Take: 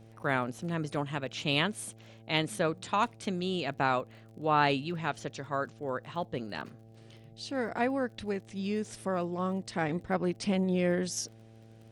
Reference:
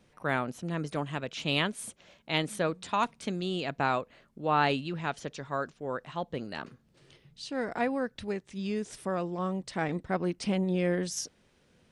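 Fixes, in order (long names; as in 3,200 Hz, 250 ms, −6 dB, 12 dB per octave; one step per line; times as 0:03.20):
click removal
hum removal 111.8 Hz, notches 7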